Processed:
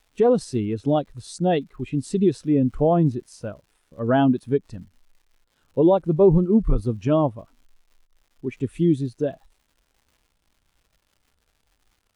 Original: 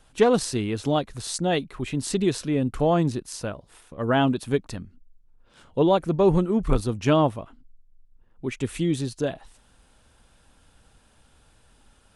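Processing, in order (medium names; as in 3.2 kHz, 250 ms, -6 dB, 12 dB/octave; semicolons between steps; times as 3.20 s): crackle 220 per s -32 dBFS; peak limiter -13.5 dBFS, peak gain reduction 7.5 dB; spectral contrast expander 1.5:1; trim +6.5 dB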